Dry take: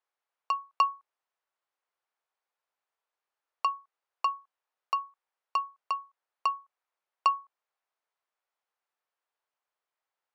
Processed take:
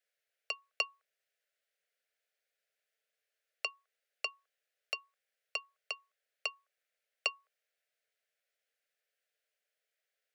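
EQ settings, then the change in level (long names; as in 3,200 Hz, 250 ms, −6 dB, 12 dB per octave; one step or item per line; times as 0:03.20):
Chebyshev high-pass with heavy ripple 420 Hz, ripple 3 dB
Butterworth band-reject 1,000 Hz, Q 0.97
+6.5 dB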